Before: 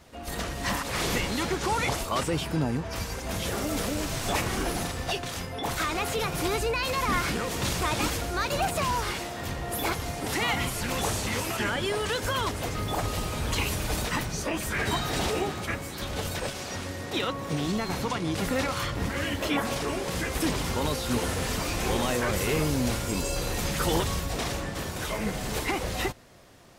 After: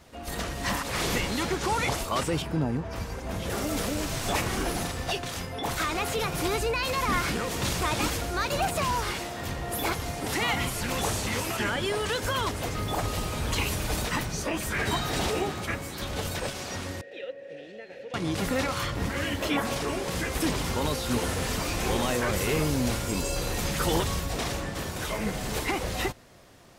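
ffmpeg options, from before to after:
-filter_complex "[0:a]asettb=1/sr,asplit=3[s0][s1][s2];[s0]atrim=end=2.424[s3];[s1]atrim=start=2.42:end=3.5,asetpts=PTS-STARTPTS,afade=t=in:d=0.004:c=qsin,afade=t=out:st=1.076:d=0.004:c=qsin,highshelf=f=2200:g=-9[s4];[s2]atrim=start=3.496[s5];[s3][s4]acrossfade=d=0.004:c1=hsin:c2=qsin[s6];[s6][s5]acrossfade=d=0.004:c1=qsin:c2=hsin,asettb=1/sr,asplit=3[s7][s8][s9];[s7]atrim=end=17.014[s10];[s8]atrim=start=17.01:end=18.14,asetpts=PTS-STARTPTS,afade=t=in:d=0.004:c=qsin,afade=t=out:st=1.126:d=0.004:c=qsin,asplit=3[s11][s12][s13];[s11]bandpass=f=530:t=q:w=8,volume=1[s14];[s12]bandpass=f=1840:t=q:w=8,volume=0.501[s15];[s13]bandpass=f=2480:t=q:w=8,volume=0.355[s16];[s14][s15][s16]amix=inputs=3:normalize=0[s17];[s9]atrim=start=18.136[s18];[s10][s17]acrossfade=d=0.004:c1=hsin:c2=qsin[s19];[s19][s18]acrossfade=d=0.004:c1=qsin:c2=hsin"

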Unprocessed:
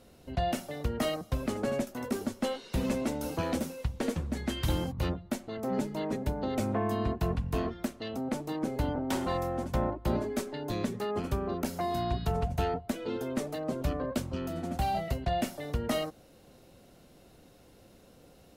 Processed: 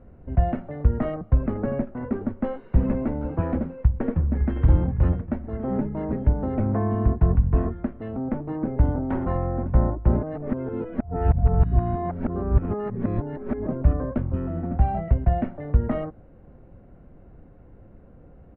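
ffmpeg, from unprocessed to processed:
-filter_complex "[0:a]asplit=2[s0][s1];[s1]afade=t=in:st=3.79:d=0.01,afade=t=out:st=4.64:d=0.01,aecho=0:1:560|1120|1680|2240|2800|3360|3920|4480:0.298538|0.19405|0.126132|0.0819861|0.0532909|0.0346391|0.0225154|0.014635[s2];[s0][s2]amix=inputs=2:normalize=0,asplit=3[s3][s4][s5];[s3]atrim=end=10.232[s6];[s4]atrim=start=10.228:end=13.672,asetpts=PTS-STARTPTS,areverse[s7];[s5]atrim=start=13.668[s8];[s6][s7]acrossfade=d=0.004:c1=hsin:c2=hsin[s9];[s9][s8]acrossfade=d=0.004:c1=hsin:c2=hsin,lowpass=f=1900:w=0.5412,lowpass=f=1900:w=1.3066,aemphasis=mode=reproduction:type=bsi,volume=1.19"

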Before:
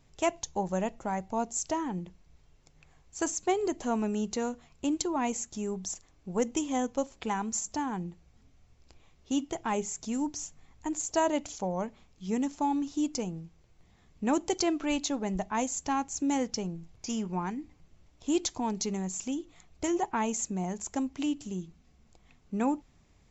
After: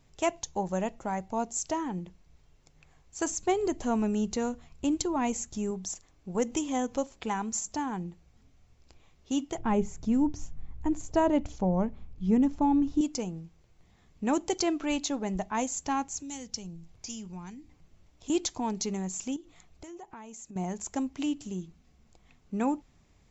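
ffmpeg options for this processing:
-filter_complex "[0:a]asettb=1/sr,asplit=3[s0][s1][s2];[s0]atrim=end=3.304[s3];[s1]atrim=start=3.3:end=5.71,asetpts=PTS-STARTPTS,afade=t=in:d=0.004:c=qsin,afade=t=out:st=2.406:d=0.004:c=qsin,lowshelf=f=130:g=10[s4];[s2]atrim=start=5.706[s5];[s3][s4]acrossfade=d=0.004:c1=hsin:c2=qsin[s6];[s6][s5]acrossfade=d=0.004:c1=qsin:c2=hsin,asettb=1/sr,asplit=3[s7][s8][s9];[s7]atrim=end=6.354[s10];[s8]atrim=start=6.35:end=7.04,asetpts=PTS-STARTPTS,afade=t=in:d=0.004:c=qsin,afade=t=out:st=0.686:d=0.004:c=qsin,acompressor=mode=upward:threshold=0.0316:ratio=2.5:attack=3.2:release=140:knee=2.83:detection=peak[s11];[s9]atrim=start=7.036[s12];[s10][s11]acrossfade=d=0.004:c1=hsin:c2=qsin[s13];[s13][s12]acrossfade=d=0.004:c1=qsin:c2=hsin,asettb=1/sr,asplit=3[s14][s15][s16];[s14]atrim=end=9.584[s17];[s15]atrim=start=9.58:end=13.01,asetpts=PTS-STARTPTS,afade=t=in:d=0.004:c=qsin,afade=t=out:st=3.426:d=0.004:c=qsin,aemphasis=mode=reproduction:type=riaa[s18];[s16]atrim=start=13.006[s19];[s17][s18]acrossfade=d=0.004:c1=hsin:c2=qsin[s20];[s20][s19]acrossfade=d=0.004:c1=qsin:c2=hsin,asettb=1/sr,asplit=3[s21][s22][s23];[s21]atrim=end=16.124[s24];[s22]atrim=start=16.12:end=18.3,asetpts=PTS-STARTPTS,afade=t=in:d=0.004:c=qsin,afade=t=out:st=2.176:d=0.004:c=qsin,acrossover=split=150|3000[s25][s26][s27];[s26]acompressor=threshold=0.00158:ratio=2:attack=3.2:release=140:knee=2.83:detection=peak[s28];[s25][s28][s27]amix=inputs=3:normalize=0[s29];[s23]atrim=start=18.296[s30];[s24][s29]acrossfade=d=0.004:c1=hsin:c2=qsin[s31];[s31][s30]acrossfade=d=0.004:c1=qsin:c2=hsin,asettb=1/sr,asplit=3[s32][s33][s34];[s32]atrim=end=19.364[s35];[s33]atrim=start=19.36:end=20.56,asetpts=PTS-STARTPTS,afade=t=in:d=0.004:c=qsin,afade=t=out:st=1.196:d=0.004:c=qsin,acompressor=threshold=0.00631:ratio=5:attack=3.2:release=140:knee=1:detection=peak[s36];[s34]atrim=start=20.556[s37];[s35][s36]acrossfade=d=0.004:c1=hsin:c2=qsin[s38];[s38][s37]acrossfade=d=0.004:c1=qsin:c2=hsin"

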